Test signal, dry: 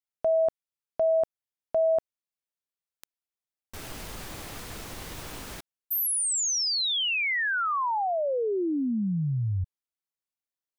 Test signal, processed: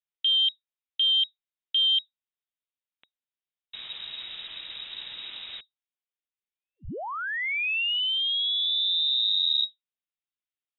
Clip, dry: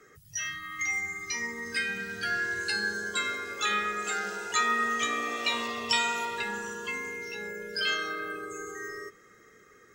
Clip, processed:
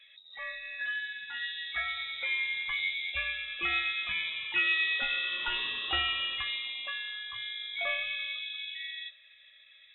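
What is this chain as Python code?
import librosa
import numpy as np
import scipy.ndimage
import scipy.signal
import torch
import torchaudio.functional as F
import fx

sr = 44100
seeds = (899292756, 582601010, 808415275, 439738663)

y = fx.octave_divider(x, sr, octaves=2, level_db=-2.0)
y = fx.freq_invert(y, sr, carrier_hz=3800)
y = fx.peak_eq(y, sr, hz=3000.0, db=8.5, octaves=1.6)
y = F.gain(torch.from_numpy(y), -8.0).numpy()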